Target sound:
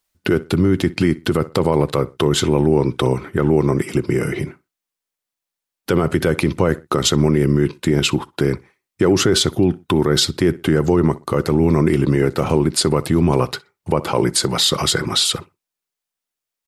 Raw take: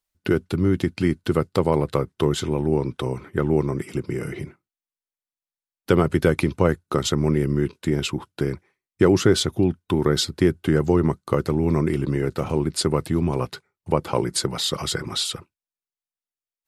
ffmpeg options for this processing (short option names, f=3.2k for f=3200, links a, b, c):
-filter_complex "[0:a]lowshelf=f=82:g=-6.5,asplit=2[a][b];[b]adelay=62,lowpass=f=4.3k:p=1,volume=-23dB,asplit=2[c][d];[d]adelay=62,lowpass=f=4.3k:p=1,volume=0.25[e];[a][c][e]amix=inputs=3:normalize=0,alimiter=level_in=14dB:limit=-1dB:release=50:level=0:latency=1,volume=-4.5dB"